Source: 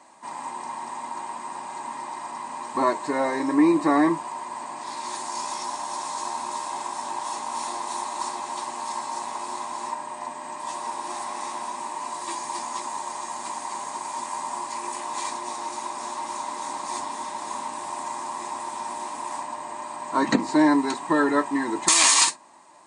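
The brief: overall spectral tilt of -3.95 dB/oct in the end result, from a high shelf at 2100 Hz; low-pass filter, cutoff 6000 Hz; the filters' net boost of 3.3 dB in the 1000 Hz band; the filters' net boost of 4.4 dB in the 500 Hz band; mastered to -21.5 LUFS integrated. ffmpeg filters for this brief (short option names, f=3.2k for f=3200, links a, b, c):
-af "lowpass=6k,equalizer=f=500:t=o:g=5.5,equalizer=f=1k:t=o:g=3.5,highshelf=f=2.1k:g=-6.5,volume=4dB"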